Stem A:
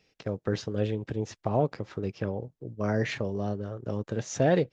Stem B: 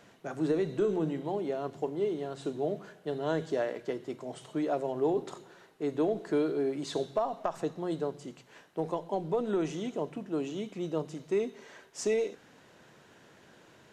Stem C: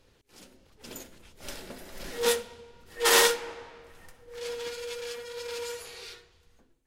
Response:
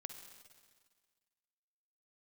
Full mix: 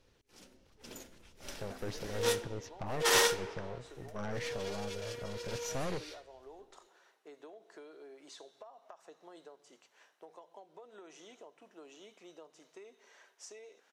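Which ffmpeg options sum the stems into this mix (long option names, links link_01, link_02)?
-filter_complex "[0:a]aeval=exprs='(tanh(35.5*val(0)+0.75)-tanh(0.75))/35.5':channel_layout=same,adelay=1350,volume=-4dB[link_01];[1:a]highpass=590,acompressor=threshold=-41dB:ratio=8,adelay=1450,volume=-8.5dB[link_02];[2:a]highshelf=frequency=9500:gain=-5.5,volume=-5.5dB[link_03];[link_01][link_02][link_03]amix=inputs=3:normalize=0,equalizer=frequency=5800:width=7.1:gain=5"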